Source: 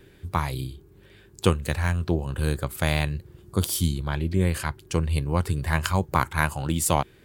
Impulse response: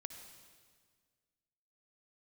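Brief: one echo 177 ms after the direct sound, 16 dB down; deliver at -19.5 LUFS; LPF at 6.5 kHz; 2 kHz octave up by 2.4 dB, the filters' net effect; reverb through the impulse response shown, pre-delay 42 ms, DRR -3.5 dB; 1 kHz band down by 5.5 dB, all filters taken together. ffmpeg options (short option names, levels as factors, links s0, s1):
-filter_complex "[0:a]lowpass=6500,equalizer=f=1000:t=o:g=-8.5,equalizer=f=2000:t=o:g=6,aecho=1:1:177:0.158,asplit=2[s0][s1];[1:a]atrim=start_sample=2205,adelay=42[s2];[s1][s2]afir=irnorm=-1:irlink=0,volume=2.37[s3];[s0][s3]amix=inputs=2:normalize=0,volume=1.19"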